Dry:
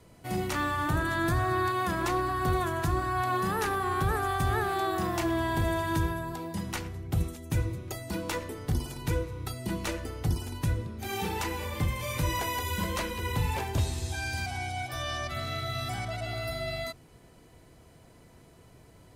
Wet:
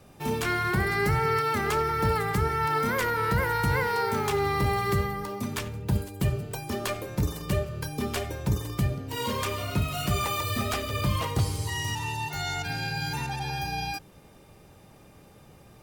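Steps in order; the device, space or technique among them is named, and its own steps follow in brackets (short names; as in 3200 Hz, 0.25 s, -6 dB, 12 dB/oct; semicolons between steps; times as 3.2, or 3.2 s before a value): nightcore (varispeed +21%); gain +2.5 dB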